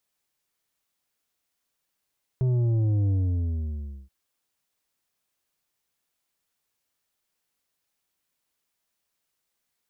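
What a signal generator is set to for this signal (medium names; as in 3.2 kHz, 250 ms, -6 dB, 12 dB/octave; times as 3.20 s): sub drop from 130 Hz, over 1.68 s, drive 7.5 dB, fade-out 1.00 s, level -21 dB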